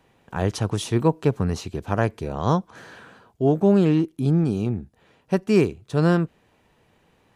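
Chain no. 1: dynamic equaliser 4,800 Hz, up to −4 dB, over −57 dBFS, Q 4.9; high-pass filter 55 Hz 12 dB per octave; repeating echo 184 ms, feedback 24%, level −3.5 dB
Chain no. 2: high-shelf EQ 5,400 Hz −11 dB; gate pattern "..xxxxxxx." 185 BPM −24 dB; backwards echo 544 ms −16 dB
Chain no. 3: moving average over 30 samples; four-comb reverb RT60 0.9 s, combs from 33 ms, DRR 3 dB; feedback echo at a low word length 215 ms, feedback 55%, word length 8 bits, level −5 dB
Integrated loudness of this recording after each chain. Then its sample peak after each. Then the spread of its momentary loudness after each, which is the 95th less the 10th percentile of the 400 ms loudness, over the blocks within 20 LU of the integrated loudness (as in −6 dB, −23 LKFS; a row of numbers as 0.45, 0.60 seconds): −21.5, −23.5, −21.0 LKFS; −2.5, −6.5, −5.5 dBFS; 13, 18, 14 LU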